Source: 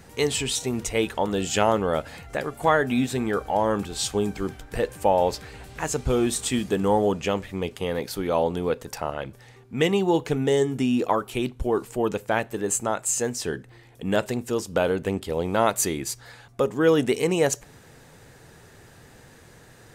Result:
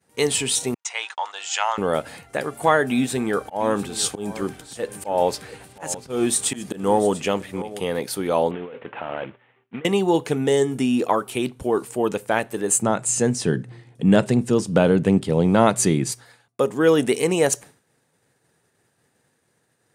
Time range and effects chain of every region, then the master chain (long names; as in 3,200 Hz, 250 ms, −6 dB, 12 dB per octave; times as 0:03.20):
0:00.74–0:01.78: elliptic band-pass filter 850–6,800 Hz, stop band 80 dB + noise gate −43 dBFS, range −43 dB
0:02.91–0:07.80: volume swells 168 ms + single-tap delay 693 ms −15.5 dB
0:08.51–0:09.85: variable-slope delta modulation 16 kbit/s + low-shelf EQ 180 Hz −10 dB + compressor whose output falls as the input rises −34 dBFS
0:12.82–0:16.12: low-pass filter 8,000 Hz + parametric band 150 Hz +14 dB 1.6 octaves
whole clip: downward expander −37 dBFS; high-pass filter 130 Hz 12 dB per octave; parametric band 9,300 Hz +9.5 dB 0.25 octaves; level +2.5 dB